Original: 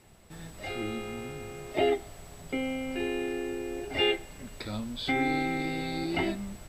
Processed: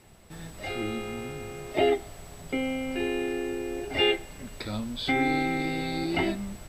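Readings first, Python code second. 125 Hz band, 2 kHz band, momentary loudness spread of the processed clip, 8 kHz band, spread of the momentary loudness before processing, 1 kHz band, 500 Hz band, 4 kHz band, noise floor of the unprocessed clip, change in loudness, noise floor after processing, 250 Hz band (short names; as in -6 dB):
+2.5 dB, +2.5 dB, 14 LU, +2.5 dB, 14 LU, +2.5 dB, +2.5 dB, +2.5 dB, -50 dBFS, +2.5 dB, -47 dBFS, +2.5 dB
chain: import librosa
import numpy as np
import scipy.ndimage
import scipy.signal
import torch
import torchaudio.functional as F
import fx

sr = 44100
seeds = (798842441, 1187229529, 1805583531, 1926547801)

y = fx.notch(x, sr, hz=7100.0, q=24.0)
y = y * librosa.db_to_amplitude(2.5)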